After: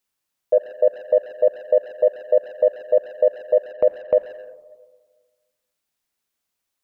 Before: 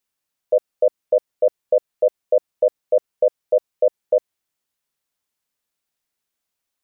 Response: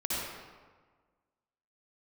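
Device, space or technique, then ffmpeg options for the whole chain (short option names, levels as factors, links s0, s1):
saturated reverb return: -filter_complex "[0:a]asettb=1/sr,asplit=3[s0][s1][s2];[s0]atrim=end=3.724[s3];[s1]atrim=start=3.72:end=4.17,asetpts=PTS-STARTPTS,afade=t=in:d=0.004:c=qsin,afade=t=out:st=0.446:d=0.004:c=qsin,agate=range=0.158:threshold=0.0316:ratio=16:detection=peak[s4];[s2]atrim=start=4.166[s5];[s3][s4]acrossfade=d=0.004:c1=hsin:c2=qsin[s6];[s6][s5]acrossfade=d=0.004:c1=qsin:c2=hsin,asplit=2[s7][s8];[1:a]atrim=start_sample=2205[s9];[s8][s9]afir=irnorm=-1:irlink=0,asoftclip=type=tanh:threshold=0.168,volume=0.126[s10];[s7][s10]amix=inputs=2:normalize=0"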